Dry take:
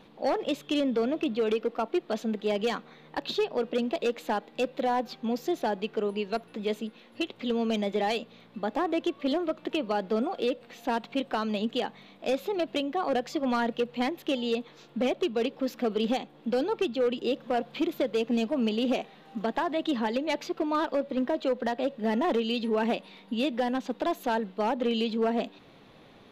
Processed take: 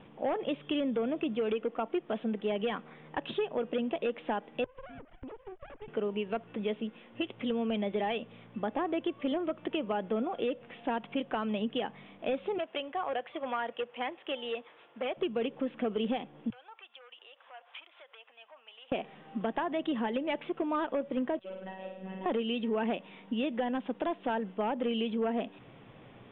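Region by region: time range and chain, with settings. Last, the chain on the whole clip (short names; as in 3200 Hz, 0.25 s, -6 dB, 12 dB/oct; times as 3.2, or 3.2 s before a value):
4.64–5.88 sine-wave speech + compressor 12:1, threshold -40 dBFS + running maximum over 33 samples
12.58–15.17 HPF 590 Hz + short-mantissa float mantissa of 2-bit + air absorption 120 m
16.5–18.92 compressor 5:1, threshold -40 dBFS + HPF 820 Hz 24 dB/oct
21.39–22.26 flutter echo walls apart 9.1 m, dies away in 0.9 s + robotiser 189 Hz + resonator 530 Hz, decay 0.28 s, mix 80%
whole clip: steep low-pass 3400 Hz 96 dB/oct; bell 120 Hz +8.5 dB 0.48 oct; compressor 2:1, threshold -31 dBFS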